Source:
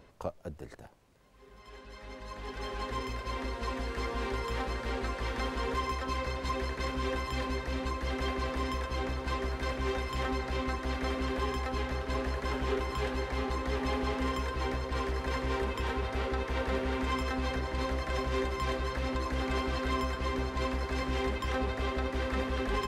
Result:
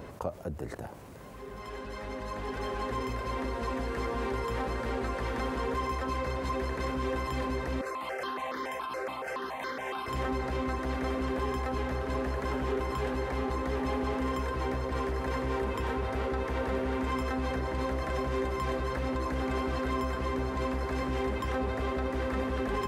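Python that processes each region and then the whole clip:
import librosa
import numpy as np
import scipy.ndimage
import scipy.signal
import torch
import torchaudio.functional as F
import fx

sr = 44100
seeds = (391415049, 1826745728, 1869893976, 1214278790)

y = fx.chain(x, sr, fx.highpass(hz=420.0, slope=12),
    fx.phaser_held(hz=7.1, low_hz=890.0, high_hz=2600.0), at=(7.81, 10.08))
y = scipy.signal.sosfilt(scipy.signal.butter(2, 63.0, 'highpass', fs=sr, output='sos'), y)
y = fx.peak_eq(y, sr, hz=4000.0, db=-7.5, octaves=2.2)
y = fx.env_flatten(y, sr, amount_pct=50)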